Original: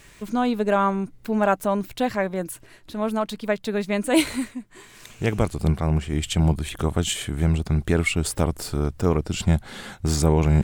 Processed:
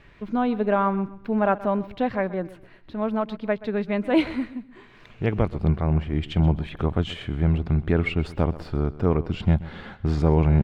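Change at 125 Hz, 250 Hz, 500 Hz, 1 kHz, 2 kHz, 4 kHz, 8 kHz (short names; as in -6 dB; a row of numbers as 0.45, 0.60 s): 0.0 dB, -0.5 dB, -1.0 dB, -1.5 dB, -3.5 dB, -7.5 dB, under -25 dB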